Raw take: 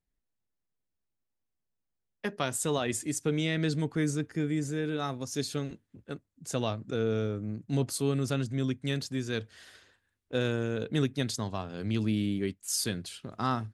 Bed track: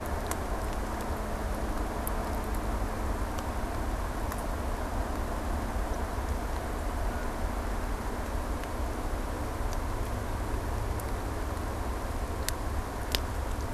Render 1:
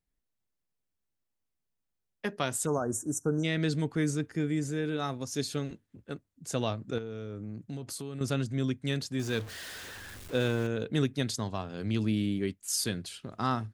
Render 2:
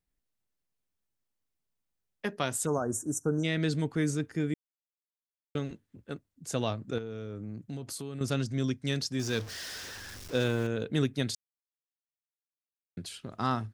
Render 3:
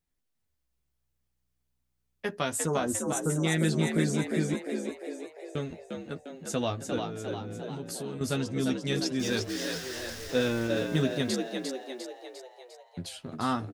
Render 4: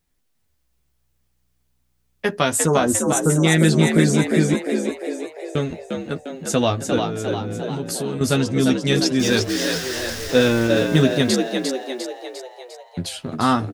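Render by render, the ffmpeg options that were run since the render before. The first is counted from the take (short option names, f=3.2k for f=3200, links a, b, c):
-filter_complex "[0:a]asplit=3[a][b][c];[a]afade=t=out:st=2.65:d=0.02[d];[b]asuperstop=centerf=3000:order=20:qfactor=0.75,afade=t=in:st=2.65:d=0.02,afade=t=out:st=3.43:d=0.02[e];[c]afade=t=in:st=3.43:d=0.02[f];[d][e][f]amix=inputs=3:normalize=0,asettb=1/sr,asplit=3[g][h][i];[g]atrim=end=6.984[j];[h]atrim=start=6.98:end=8.21,asetpts=PTS-STARTPTS,afade=t=in:d=0.004:c=qsin,afade=t=out:st=1.226:d=0.004:c=qsin,acompressor=threshold=-35dB:ratio=6:attack=3.2:release=140:knee=1:detection=peak[k];[i]atrim=start=8.206[l];[j][k]acrossfade=d=0.004:c1=hsin:c2=qsin[m];[m][l]acrossfade=d=0.004:c1=qsin:c2=hsin,asettb=1/sr,asplit=3[n][o][p];[n]atrim=end=9.194[q];[o]atrim=start=9.19:end=10.67,asetpts=PTS-STARTPTS,afade=t=in:d=0.004:c=qsin,afade=t=out:st=1.476:d=0.004:c=qsin,aeval=exprs='val(0)+0.5*0.0112*sgn(val(0))':c=same[r];[p]atrim=start=10.666[s];[q][r]acrossfade=d=0.004:c1=hsin:c2=qsin[t];[t][s]acrossfade=d=0.004:c1=qsin:c2=hsin"
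-filter_complex "[0:a]asettb=1/sr,asplit=3[a][b][c];[a]atrim=end=8.314[d];[b]atrim=start=8.31:end=10.44,asetpts=PTS-STARTPTS,afade=t=in:d=0.004:c=qsin,afade=t=out:st=2.126:d=0.004:c=qsin,equalizer=f=5.4k:w=2.7:g=9[e];[c]atrim=start=10.436[f];[d][e]acrossfade=d=0.004:c1=hsin:c2=qsin[g];[g][f]acrossfade=d=0.004:c1=qsin:c2=hsin,asplit=5[h][i][j][k][l];[h]atrim=end=4.54,asetpts=PTS-STARTPTS,afade=t=out:st=4.536:d=0.004:c=hsin[m];[i]atrim=start=4.54:end=5.55,asetpts=PTS-STARTPTS,volume=0[n];[j]atrim=start=5.55:end=11.35,asetpts=PTS-STARTPTS,afade=t=in:d=0.004:c=hsin,afade=t=out:st=5.796:d=0.004:c=hsin[o];[k]atrim=start=11.35:end=12.97,asetpts=PTS-STARTPTS,volume=0[p];[l]atrim=start=12.97,asetpts=PTS-STARTPTS,afade=t=in:d=0.004:c=hsin[q];[m][n][o][p][q]concat=n=5:v=0:a=1"
-filter_complex "[0:a]asplit=2[a][b];[b]adelay=12,volume=-5.5dB[c];[a][c]amix=inputs=2:normalize=0,asplit=2[d][e];[e]asplit=7[f][g][h][i][j][k][l];[f]adelay=351,afreqshift=62,volume=-5dB[m];[g]adelay=702,afreqshift=124,volume=-10.4dB[n];[h]adelay=1053,afreqshift=186,volume=-15.7dB[o];[i]adelay=1404,afreqshift=248,volume=-21.1dB[p];[j]adelay=1755,afreqshift=310,volume=-26.4dB[q];[k]adelay=2106,afreqshift=372,volume=-31.8dB[r];[l]adelay=2457,afreqshift=434,volume=-37.1dB[s];[m][n][o][p][q][r][s]amix=inputs=7:normalize=0[t];[d][t]amix=inputs=2:normalize=0"
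-af "volume=11dB,alimiter=limit=-3dB:level=0:latency=1"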